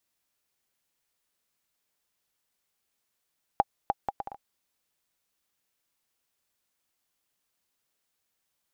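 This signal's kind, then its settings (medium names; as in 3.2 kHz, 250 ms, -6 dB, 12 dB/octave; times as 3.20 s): bouncing ball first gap 0.30 s, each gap 0.62, 805 Hz, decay 35 ms -8.5 dBFS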